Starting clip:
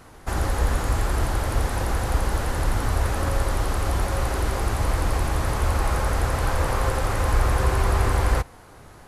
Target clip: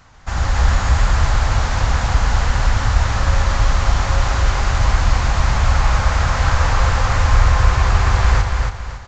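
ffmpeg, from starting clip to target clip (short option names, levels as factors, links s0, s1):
-filter_complex "[0:a]equalizer=f=370:t=o:w=1.3:g=-14,aresample=16000,aresample=44100,asplit=2[s0][s1];[s1]aecho=0:1:278|556|834|1112:0.596|0.191|0.061|0.0195[s2];[s0][s2]amix=inputs=2:normalize=0,dynaudnorm=f=130:g=5:m=2.11,volume=1.19"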